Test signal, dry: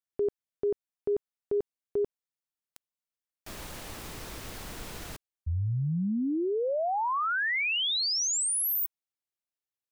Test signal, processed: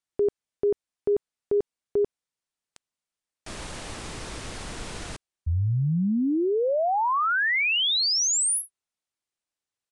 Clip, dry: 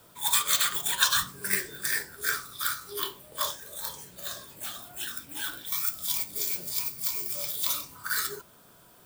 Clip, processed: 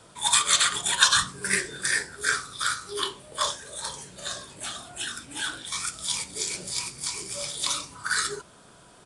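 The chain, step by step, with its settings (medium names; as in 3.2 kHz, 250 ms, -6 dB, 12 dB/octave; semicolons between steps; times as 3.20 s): resampled via 22.05 kHz; trim +5 dB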